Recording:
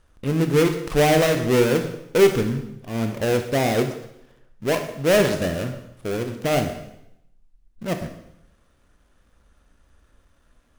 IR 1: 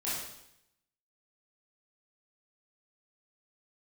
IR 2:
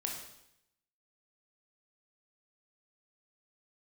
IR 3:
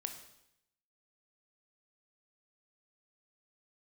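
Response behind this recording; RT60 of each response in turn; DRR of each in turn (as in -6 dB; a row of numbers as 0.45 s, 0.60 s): 3; 0.75 s, 0.75 s, 0.75 s; -10.0 dB, 0.0 dB, 5.5 dB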